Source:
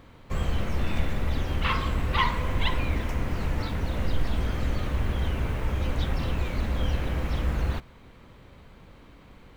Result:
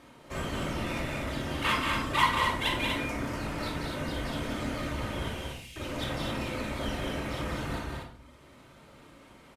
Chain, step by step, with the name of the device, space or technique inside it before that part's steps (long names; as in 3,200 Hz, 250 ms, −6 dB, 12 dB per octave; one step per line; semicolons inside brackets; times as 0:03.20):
reverb reduction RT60 1.3 s
early wireless headset (high-pass filter 300 Hz 6 dB per octave; variable-slope delta modulation 64 kbit/s)
0:05.29–0:05.76: Butterworth high-pass 2,500 Hz
loudspeakers that aren't time-aligned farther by 19 metres −10 dB, 63 metres −5 dB, 83 metres −5 dB
rectangular room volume 850 cubic metres, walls furnished, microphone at 2.7 metres
level −1.5 dB